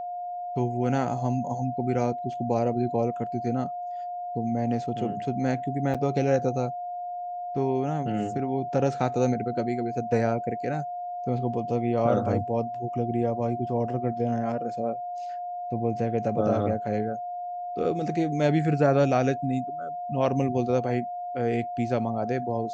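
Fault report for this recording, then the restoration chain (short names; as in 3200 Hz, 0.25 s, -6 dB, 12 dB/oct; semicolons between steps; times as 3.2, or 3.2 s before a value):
tone 710 Hz -31 dBFS
5.94–5.95 gap 6.1 ms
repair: notch 710 Hz, Q 30; interpolate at 5.94, 6.1 ms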